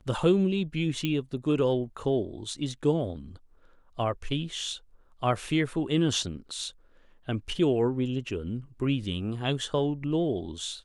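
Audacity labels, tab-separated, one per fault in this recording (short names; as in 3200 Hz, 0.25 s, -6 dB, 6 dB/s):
1.050000	1.050000	pop -16 dBFS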